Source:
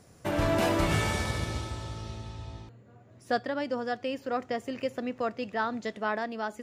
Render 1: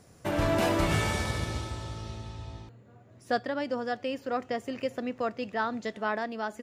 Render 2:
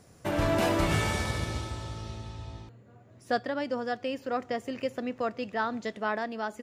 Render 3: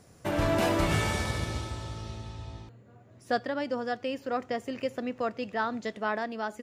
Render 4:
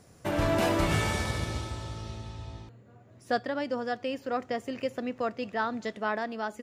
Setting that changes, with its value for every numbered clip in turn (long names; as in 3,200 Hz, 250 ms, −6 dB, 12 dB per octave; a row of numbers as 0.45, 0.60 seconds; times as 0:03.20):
far-end echo of a speakerphone, delay time: 380, 140, 90, 220 milliseconds